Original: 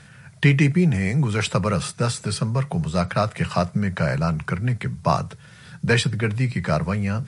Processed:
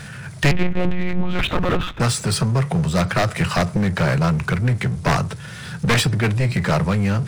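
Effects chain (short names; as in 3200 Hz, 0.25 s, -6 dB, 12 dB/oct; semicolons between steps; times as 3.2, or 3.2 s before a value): one-sided fold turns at -18 dBFS; 0.51–2 monotone LPC vocoder at 8 kHz 180 Hz; power-law curve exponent 0.7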